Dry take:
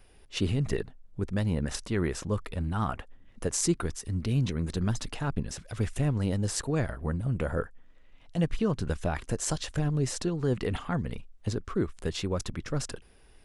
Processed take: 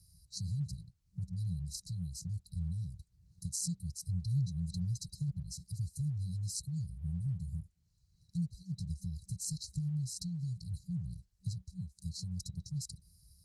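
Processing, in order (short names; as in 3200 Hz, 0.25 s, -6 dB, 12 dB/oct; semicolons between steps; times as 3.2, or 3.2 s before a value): compressor 2:1, threshold -42 dBFS, peak gain reduction 12 dB; HPF 55 Hz 24 dB/oct; FFT band-reject 190–3900 Hz; 2.92–5.35 dynamic EQ 130 Hz, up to +3 dB, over -51 dBFS, Q 2.4; gain +3 dB; Opus 20 kbps 48000 Hz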